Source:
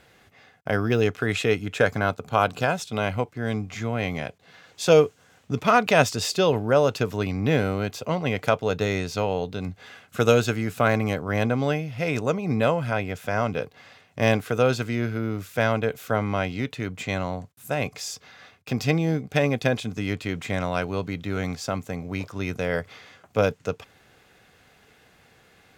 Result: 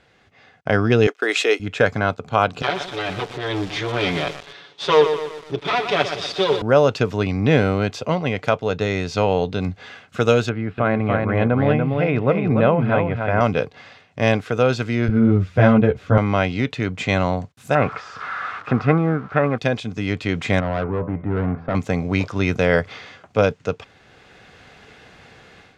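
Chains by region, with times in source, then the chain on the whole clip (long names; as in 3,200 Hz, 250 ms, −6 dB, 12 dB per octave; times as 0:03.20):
0:01.07–0:01.60: Butterworth high-pass 310 Hz + high-shelf EQ 5,100 Hz +11 dB + downward expander −30 dBFS
0:02.62–0:06.62: lower of the sound and its delayed copy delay 7 ms + loudspeaker in its box 140–8,500 Hz, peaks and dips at 240 Hz −8 dB, 390 Hz +8 dB, 3,500 Hz +9 dB, 7,200 Hz −8 dB + feedback echo at a low word length 122 ms, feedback 55%, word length 6 bits, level −8 dB
0:10.49–0:13.41: high-frequency loss of the air 410 metres + single-tap delay 290 ms −5 dB
0:15.08–0:16.18: RIAA equalisation playback + string-ensemble chorus
0:17.75–0:19.58: spike at every zero crossing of −21.5 dBFS + low-pass with resonance 1,300 Hz, resonance Q 6.4
0:20.60–0:21.75: low-pass filter 1,400 Hz 24 dB per octave + hum removal 83.45 Hz, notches 36 + tube saturation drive 25 dB, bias 0.25
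whole clip: automatic gain control; low-pass filter 5,600 Hz 12 dB per octave; level −1 dB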